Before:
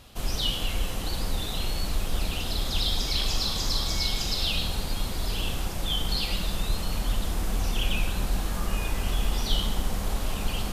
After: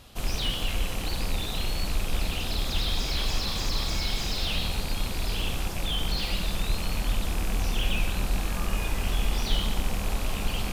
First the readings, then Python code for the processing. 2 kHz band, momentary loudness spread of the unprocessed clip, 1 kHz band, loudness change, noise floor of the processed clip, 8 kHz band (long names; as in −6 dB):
+2.0 dB, 5 LU, 0.0 dB, −0.5 dB, −32 dBFS, −1.5 dB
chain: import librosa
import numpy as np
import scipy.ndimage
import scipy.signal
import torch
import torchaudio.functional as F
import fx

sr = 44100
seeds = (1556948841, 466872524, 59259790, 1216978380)

y = fx.rattle_buzz(x, sr, strikes_db=-32.0, level_db=-26.0)
y = fx.slew_limit(y, sr, full_power_hz=120.0)